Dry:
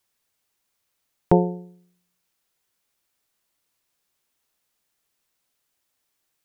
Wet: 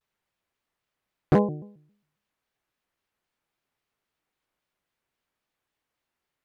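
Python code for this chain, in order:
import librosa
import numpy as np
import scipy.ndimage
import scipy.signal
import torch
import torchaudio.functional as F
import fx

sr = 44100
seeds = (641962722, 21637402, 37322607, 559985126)

y = fx.bass_treble(x, sr, bass_db=1, treble_db=-14)
y = np.clip(10.0 ** (11.0 / 20.0) * y, -1.0, 1.0) / 10.0 ** (11.0 / 20.0)
y = fx.vibrato_shape(y, sr, shape='square', rate_hz=3.7, depth_cents=250.0)
y = F.gain(torch.from_numpy(y), -1.5).numpy()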